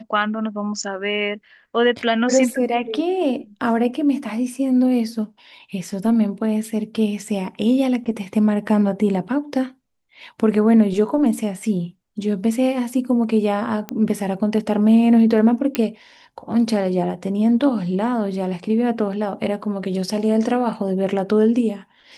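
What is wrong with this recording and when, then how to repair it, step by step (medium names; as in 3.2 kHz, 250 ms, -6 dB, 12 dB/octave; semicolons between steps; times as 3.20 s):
13.89 s: pop -12 dBFS
15.75 s: pop -5 dBFS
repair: de-click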